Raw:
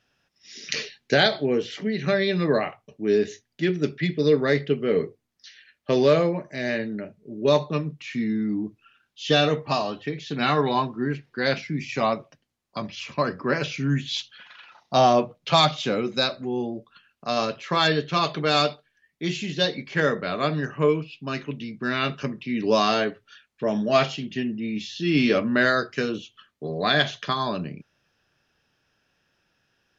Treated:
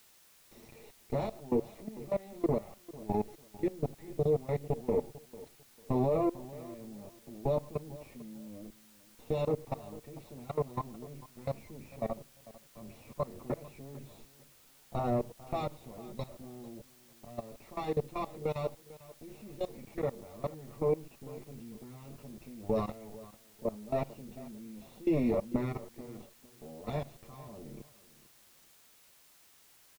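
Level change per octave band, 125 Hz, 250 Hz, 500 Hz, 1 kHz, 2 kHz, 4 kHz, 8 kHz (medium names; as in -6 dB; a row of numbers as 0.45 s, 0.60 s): -9.5 dB, -11.5 dB, -11.0 dB, -15.5 dB, -27.0 dB, -29.5 dB, no reading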